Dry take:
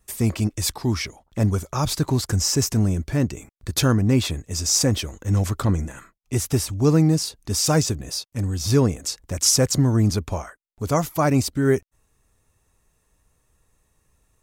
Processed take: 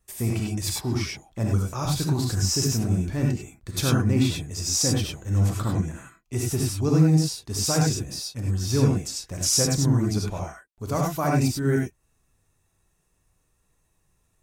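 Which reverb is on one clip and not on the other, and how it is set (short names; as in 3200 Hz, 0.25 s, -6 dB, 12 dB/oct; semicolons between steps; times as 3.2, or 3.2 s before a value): non-linear reverb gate 0.12 s rising, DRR -1.5 dB; gain -7 dB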